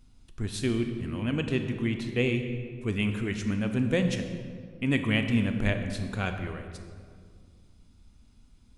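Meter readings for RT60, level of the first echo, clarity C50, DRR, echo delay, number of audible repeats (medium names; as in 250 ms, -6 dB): 2.1 s, no echo, 7.0 dB, 6.0 dB, no echo, no echo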